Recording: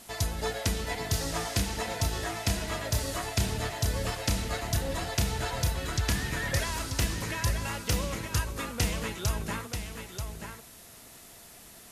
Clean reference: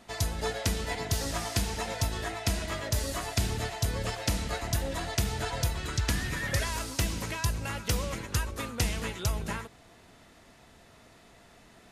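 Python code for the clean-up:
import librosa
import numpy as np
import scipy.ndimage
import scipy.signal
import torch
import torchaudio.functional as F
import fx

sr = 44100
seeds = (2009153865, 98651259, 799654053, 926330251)

y = fx.fix_declick_ar(x, sr, threshold=6.5)
y = fx.noise_reduce(y, sr, print_start_s=11.4, print_end_s=11.9, reduce_db=6.0)
y = fx.fix_echo_inverse(y, sr, delay_ms=935, level_db=-7.0)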